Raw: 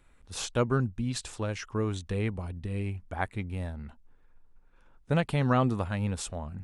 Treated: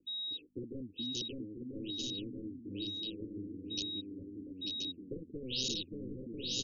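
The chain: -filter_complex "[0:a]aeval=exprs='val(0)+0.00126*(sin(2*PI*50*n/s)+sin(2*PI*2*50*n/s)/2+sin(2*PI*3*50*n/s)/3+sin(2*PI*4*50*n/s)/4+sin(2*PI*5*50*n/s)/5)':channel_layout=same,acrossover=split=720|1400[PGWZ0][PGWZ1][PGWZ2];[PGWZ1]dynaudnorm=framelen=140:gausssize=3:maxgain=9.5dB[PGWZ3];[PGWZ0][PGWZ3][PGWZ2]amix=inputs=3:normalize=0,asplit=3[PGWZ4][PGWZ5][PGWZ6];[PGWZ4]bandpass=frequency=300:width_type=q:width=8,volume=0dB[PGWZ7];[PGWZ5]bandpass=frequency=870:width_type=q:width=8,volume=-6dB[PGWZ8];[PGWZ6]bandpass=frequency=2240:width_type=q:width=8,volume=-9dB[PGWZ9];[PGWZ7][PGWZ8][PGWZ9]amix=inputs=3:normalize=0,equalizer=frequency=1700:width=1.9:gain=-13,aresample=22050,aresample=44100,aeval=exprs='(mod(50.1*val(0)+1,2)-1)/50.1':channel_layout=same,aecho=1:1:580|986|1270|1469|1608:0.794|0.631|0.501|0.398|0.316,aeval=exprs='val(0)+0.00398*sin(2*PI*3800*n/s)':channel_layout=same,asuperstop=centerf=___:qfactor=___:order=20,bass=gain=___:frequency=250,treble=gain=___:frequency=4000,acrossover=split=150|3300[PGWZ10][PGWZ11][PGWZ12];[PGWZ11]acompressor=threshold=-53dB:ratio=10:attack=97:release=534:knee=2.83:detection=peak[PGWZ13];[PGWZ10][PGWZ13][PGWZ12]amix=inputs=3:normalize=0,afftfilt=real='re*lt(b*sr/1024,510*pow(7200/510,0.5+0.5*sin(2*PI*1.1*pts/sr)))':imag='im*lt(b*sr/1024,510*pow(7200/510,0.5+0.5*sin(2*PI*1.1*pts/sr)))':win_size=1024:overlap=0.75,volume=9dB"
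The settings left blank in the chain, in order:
1200, 0.54, -8, 6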